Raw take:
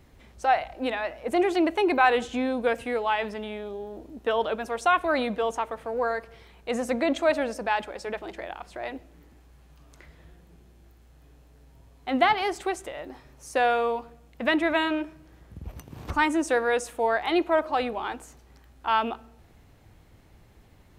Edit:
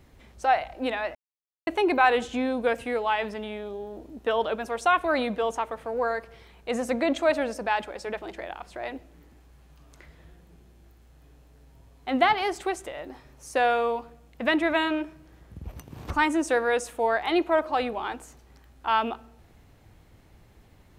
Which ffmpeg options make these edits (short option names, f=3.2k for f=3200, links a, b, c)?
-filter_complex "[0:a]asplit=3[a][b][c];[a]atrim=end=1.15,asetpts=PTS-STARTPTS,afade=t=out:st=1.146:d=0.004:c=hsin[d];[b]atrim=start=1.15:end=1.67,asetpts=PTS-STARTPTS,volume=0[e];[c]atrim=start=1.67,asetpts=PTS-STARTPTS,afade=t=in:d=0.004:c=hsin[f];[d][e][f]concat=n=3:v=0:a=1"